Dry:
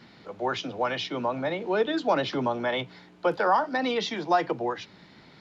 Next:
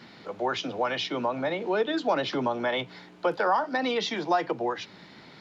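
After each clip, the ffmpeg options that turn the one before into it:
-af "lowshelf=f=110:g=-9,acompressor=threshold=0.02:ratio=1.5,volume=1.58"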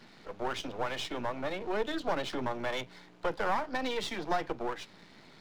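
-af "aeval=exprs='if(lt(val(0),0),0.251*val(0),val(0))':c=same,volume=0.708"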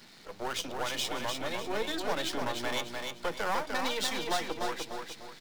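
-af "crystalizer=i=3.5:c=0,aecho=1:1:299|598|897|1196|1495:0.596|0.22|0.0815|0.0302|0.0112,volume=0.75"

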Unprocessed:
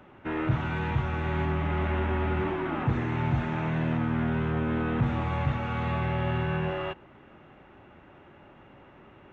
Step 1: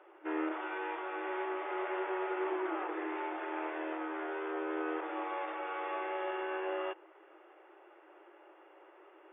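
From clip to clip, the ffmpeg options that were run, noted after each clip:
-af "afftfilt=real='re*between(b*sr/4096,310,3600)':imag='im*between(b*sr/4096,310,3600)':win_size=4096:overlap=0.75,aemphasis=mode=reproduction:type=75fm,volume=0.631"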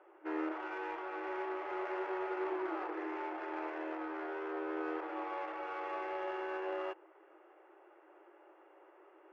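-af "adynamicsmooth=sensitivity=6:basefreq=2900,volume=0.794"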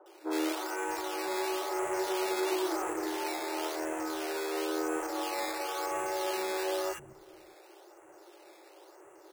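-filter_complex "[0:a]acrusher=samples=10:mix=1:aa=0.000001:lfo=1:lforange=10:lforate=0.97,acrossover=split=200|1300[s0][s1][s2];[s2]adelay=60[s3];[s0]adelay=610[s4];[s4][s1][s3]amix=inputs=3:normalize=0,volume=2.24"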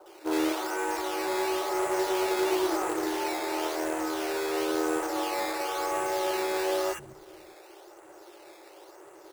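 -filter_complex "[0:a]acrossover=split=170|1100[s0][s1][s2];[s1]acrusher=bits=3:mode=log:mix=0:aa=0.000001[s3];[s2]asoftclip=type=tanh:threshold=0.0188[s4];[s0][s3][s4]amix=inputs=3:normalize=0,volume=1.68"

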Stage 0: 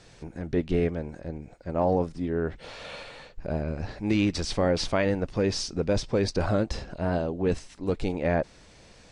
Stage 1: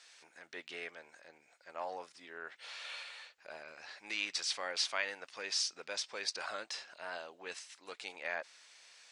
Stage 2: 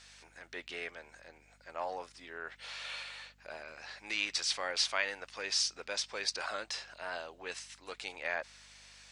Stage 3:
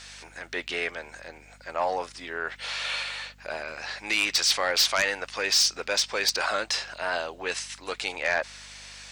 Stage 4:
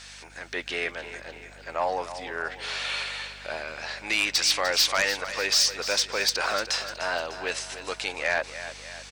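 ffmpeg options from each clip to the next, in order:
-af "highpass=1500,volume=0.841"
-af "aeval=exprs='val(0)+0.000355*(sin(2*PI*50*n/s)+sin(2*PI*2*50*n/s)/2+sin(2*PI*3*50*n/s)/3+sin(2*PI*4*50*n/s)/4+sin(2*PI*5*50*n/s)/5)':c=same,volume=1.41"
-af "aeval=exprs='0.168*sin(PI/2*2.51*val(0)/0.168)':c=same"
-af "aecho=1:1:300|600|900|1200|1500:0.251|0.131|0.0679|0.0353|0.0184"

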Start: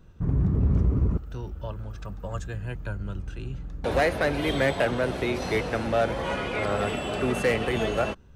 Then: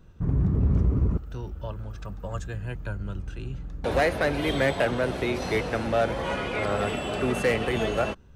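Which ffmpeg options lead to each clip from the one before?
-af anull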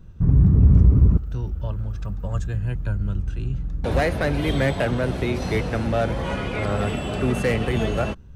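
-af "bass=f=250:g=9,treble=f=4000:g=1"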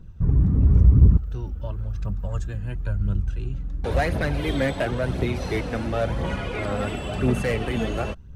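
-af "aphaser=in_gain=1:out_gain=1:delay=4.2:decay=0.41:speed=0.96:type=triangular,volume=0.708"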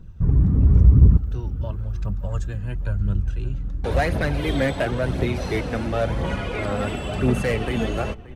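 -filter_complex "[0:a]asplit=2[s0][s1];[s1]adelay=577.3,volume=0.126,highshelf=f=4000:g=-13[s2];[s0][s2]amix=inputs=2:normalize=0,volume=1.19"

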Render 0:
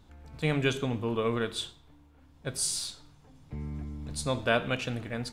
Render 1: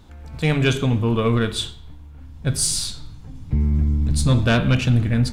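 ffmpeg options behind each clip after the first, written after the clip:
-af "asubboost=boost=5:cutoff=240,aeval=exprs='0.266*sin(PI/2*1.58*val(0)/0.266)':c=same,bandreject=f=145.3:t=h:w=4,bandreject=f=290.6:t=h:w=4,bandreject=f=435.9:t=h:w=4,bandreject=f=581.2:t=h:w=4,bandreject=f=726.5:t=h:w=4,bandreject=f=871.8:t=h:w=4,bandreject=f=1017.1:t=h:w=4,bandreject=f=1162.4:t=h:w=4,bandreject=f=1307.7:t=h:w=4,bandreject=f=1453:t=h:w=4,bandreject=f=1598.3:t=h:w=4,bandreject=f=1743.6:t=h:w=4,bandreject=f=1888.9:t=h:w=4,bandreject=f=2034.2:t=h:w=4,bandreject=f=2179.5:t=h:w=4,bandreject=f=2324.8:t=h:w=4,bandreject=f=2470.1:t=h:w=4,bandreject=f=2615.4:t=h:w=4,bandreject=f=2760.7:t=h:w=4,bandreject=f=2906:t=h:w=4,bandreject=f=3051.3:t=h:w=4,bandreject=f=3196.6:t=h:w=4,bandreject=f=3341.9:t=h:w=4,bandreject=f=3487.2:t=h:w=4,bandreject=f=3632.5:t=h:w=4,bandreject=f=3777.8:t=h:w=4,bandreject=f=3923.1:t=h:w=4,bandreject=f=4068.4:t=h:w=4,bandreject=f=4213.7:t=h:w=4,bandreject=f=4359:t=h:w=4,bandreject=f=4504.3:t=h:w=4,bandreject=f=4649.6:t=h:w=4,volume=1.19"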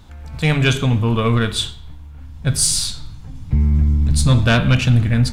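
-af "equalizer=f=360:t=o:w=1.4:g=-5.5,volume=1.68"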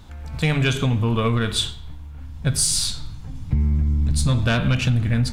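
-af "acompressor=threshold=0.158:ratio=6"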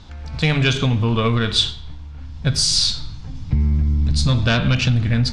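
-af "lowpass=f=5100:t=q:w=1.9,volume=1.26"

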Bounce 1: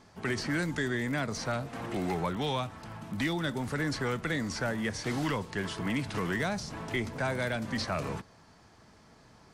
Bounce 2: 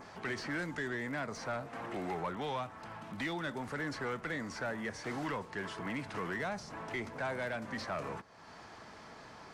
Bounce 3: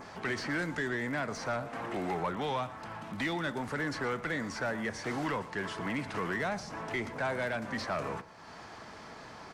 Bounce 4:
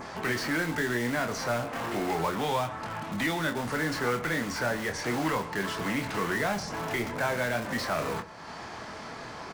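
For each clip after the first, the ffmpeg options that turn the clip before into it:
-filter_complex "[0:a]adynamicequalizer=threshold=0.00224:dfrequency=3600:dqfactor=1.1:tfrequency=3600:tqfactor=1.1:attack=5:release=100:ratio=0.375:range=3:mode=cutabove:tftype=bell,acompressor=mode=upward:threshold=0.0141:ratio=2.5,asplit=2[s0][s1];[s1]highpass=f=720:p=1,volume=4.47,asoftclip=type=tanh:threshold=0.1[s2];[s0][s2]amix=inputs=2:normalize=0,lowpass=f=2500:p=1,volume=0.501,volume=0.447"
-af "aecho=1:1:117:0.141,volume=1.58"
-filter_complex "[0:a]asplit=2[s0][s1];[s1]aeval=exprs='(mod(53.1*val(0)+1,2)-1)/53.1':c=same,volume=0.376[s2];[s0][s2]amix=inputs=2:normalize=0,asplit=2[s3][s4];[s4]adelay=25,volume=0.473[s5];[s3][s5]amix=inputs=2:normalize=0,volume=1.5"

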